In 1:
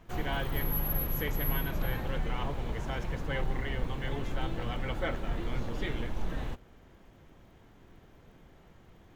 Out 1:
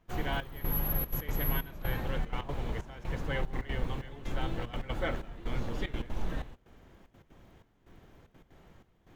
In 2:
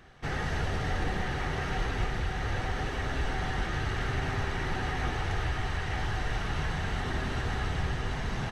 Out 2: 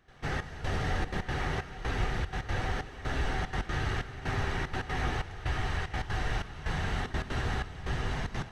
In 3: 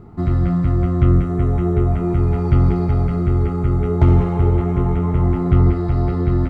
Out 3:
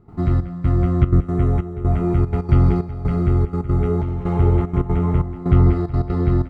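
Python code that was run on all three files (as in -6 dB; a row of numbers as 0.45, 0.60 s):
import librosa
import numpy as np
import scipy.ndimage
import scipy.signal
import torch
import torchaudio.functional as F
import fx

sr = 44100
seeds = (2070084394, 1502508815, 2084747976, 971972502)

y = fx.step_gate(x, sr, bpm=187, pattern='.xxxx...xxxxx.x', floor_db=-12.0, edge_ms=4.5)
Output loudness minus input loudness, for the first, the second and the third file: -1.5, -1.5, -2.0 LU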